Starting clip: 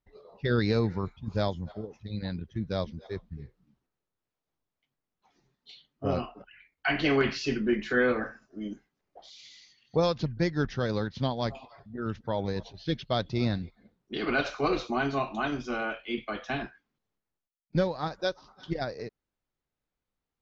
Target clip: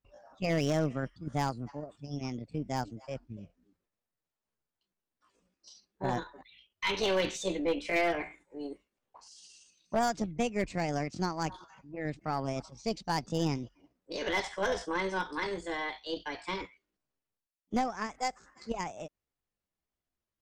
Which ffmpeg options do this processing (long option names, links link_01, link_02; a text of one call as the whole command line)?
ffmpeg -i in.wav -af "asetrate=60591,aresample=44100,atempo=0.727827,volume=19dB,asoftclip=hard,volume=-19dB,aeval=exprs='0.119*(cos(1*acos(clip(val(0)/0.119,-1,1)))-cos(1*PI/2))+0.0188*(cos(2*acos(clip(val(0)/0.119,-1,1)))-cos(2*PI/2))+0.00299*(cos(4*acos(clip(val(0)/0.119,-1,1)))-cos(4*PI/2))+0.00168*(cos(6*acos(clip(val(0)/0.119,-1,1)))-cos(6*PI/2))':channel_layout=same,volume=-3.5dB" out.wav